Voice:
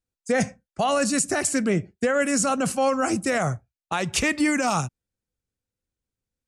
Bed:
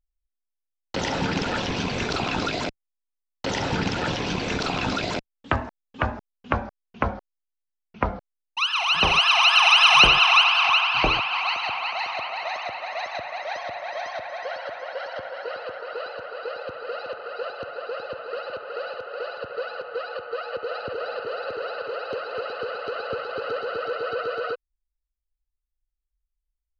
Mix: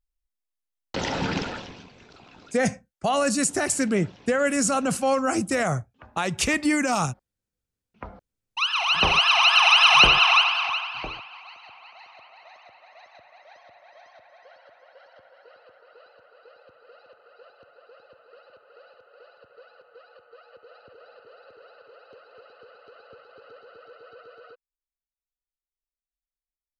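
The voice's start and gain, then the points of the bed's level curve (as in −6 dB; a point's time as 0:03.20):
2.25 s, −0.5 dB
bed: 0:01.38 −1.5 dB
0:01.94 −24.5 dB
0:07.65 −24.5 dB
0:08.62 −0.5 dB
0:10.31 −0.5 dB
0:11.45 −19.5 dB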